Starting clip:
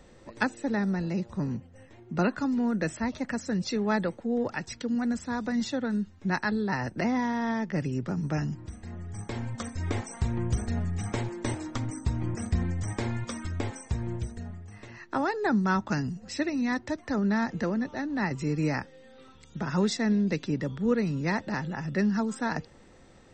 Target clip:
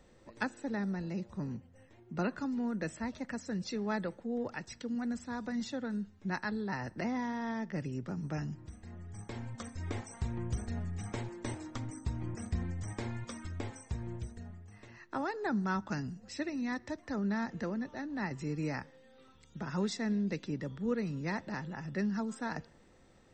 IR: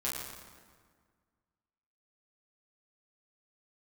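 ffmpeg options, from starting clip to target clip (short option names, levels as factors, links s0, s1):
-filter_complex "[0:a]asplit=2[s0][s1];[1:a]atrim=start_sample=2205,afade=t=out:st=0.26:d=0.01,atrim=end_sample=11907[s2];[s1][s2]afir=irnorm=-1:irlink=0,volume=0.0501[s3];[s0][s3]amix=inputs=2:normalize=0,volume=0.398"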